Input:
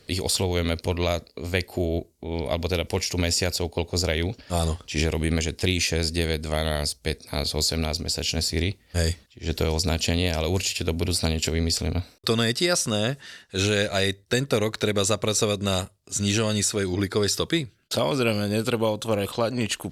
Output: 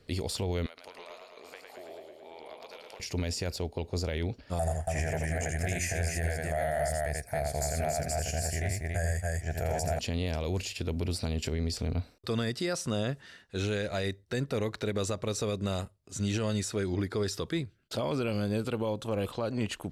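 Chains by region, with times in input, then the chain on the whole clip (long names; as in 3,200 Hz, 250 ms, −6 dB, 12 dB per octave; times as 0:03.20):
0:00.66–0:03.00: Chebyshev high-pass filter 840 Hz + downward compressor 10 to 1, threshold −36 dBFS + feedback echo with a swinging delay time 110 ms, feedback 70%, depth 112 cents, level −4 dB
0:04.59–0:09.99: drawn EQ curve 140 Hz 0 dB, 270 Hz −11 dB, 480 Hz −4 dB, 690 Hz +14 dB, 1,100 Hz −12 dB, 1,700 Hz +11 dB, 2,500 Hz −2 dB, 3,800 Hz −15 dB, 7,000 Hz +9 dB + multi-tap delay 83/280 ms −5/−4.5 dB
whole clip: high-shelf EQ 2,800 Hz −9 dB; brickwall limiter −16.5 dBFS; low-shelf EQ 65 Hz +5 dB; level −5 dB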